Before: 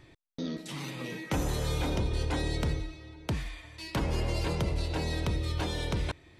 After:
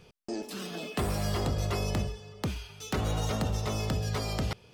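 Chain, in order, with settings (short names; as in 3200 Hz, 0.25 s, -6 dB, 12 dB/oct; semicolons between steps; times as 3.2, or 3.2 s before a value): speed mistake 33 rpm record played at 45 rpm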